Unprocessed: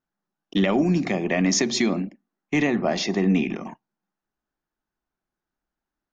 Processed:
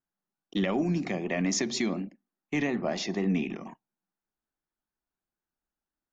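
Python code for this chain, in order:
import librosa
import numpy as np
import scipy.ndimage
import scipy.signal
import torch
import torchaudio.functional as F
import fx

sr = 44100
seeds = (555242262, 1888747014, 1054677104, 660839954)

y = fx.vibrato(x, sr, rate_hz=4.1, depth_cents=51.0)
y = F.gain(torch.from_numpy(y), -7.0).numpy()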